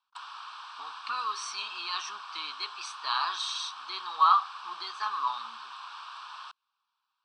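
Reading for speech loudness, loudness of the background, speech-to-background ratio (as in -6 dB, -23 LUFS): -31.0 LUFS, -43.0 LUFS, 12.0 dB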